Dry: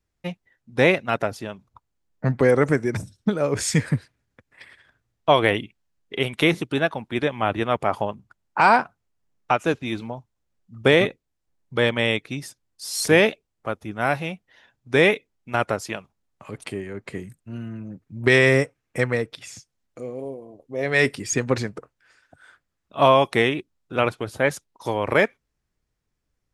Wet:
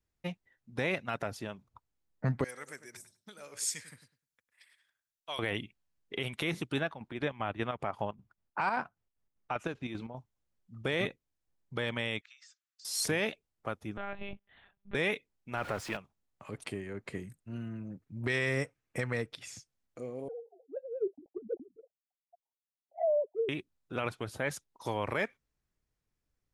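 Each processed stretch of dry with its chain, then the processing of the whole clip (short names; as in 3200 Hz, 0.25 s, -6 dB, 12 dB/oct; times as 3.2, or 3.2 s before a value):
2.44–5.39 pre-emphasis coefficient 0.97 + darkening echo 0.101 s, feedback 19%, low-pass 1700 Hz, level -10 dB
6.81–10.16 high shelf 5600 Hz -9.5 dB + chopper 5.1 Hz, depth 60%, duty 60%
12.21–12.85 Chebyshev band-pass 1200–7600 Hz, order 5 + compressor 16:1, threshold -46 dBFS
13.97–14.95 compressor 4:1, threshold -28 dBFS + monotone LPC vocoder at 8 kHz 200 Hz
15.57–15.97 zero-crossing step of -29 dBFS + tone controls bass -2 dB, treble -11 dB
20.28–23.49 sine-wave speech + steep low-pass 780 Hz 96 dB/oct + envelope flanger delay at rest 7.7 ms, full sweep at -17.5 dBFS
whole clip: dynamic EQ 430 Hz, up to -4 dB, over -31 dBFS, Q 0.76; limiter -13.5 dBFS; gain -6.5 dB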